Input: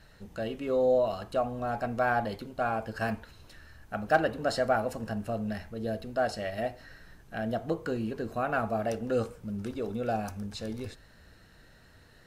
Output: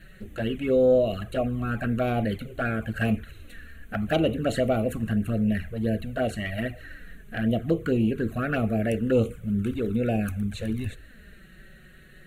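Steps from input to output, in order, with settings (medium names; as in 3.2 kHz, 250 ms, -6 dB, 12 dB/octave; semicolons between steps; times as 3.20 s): static phaser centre 2.2 kHz, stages 4; sine folder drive 4 dB, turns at -15 dBFS; touch-sensitive flanger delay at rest 6.5 ms, full sweep at -22 dBFS; trim +3.5 dB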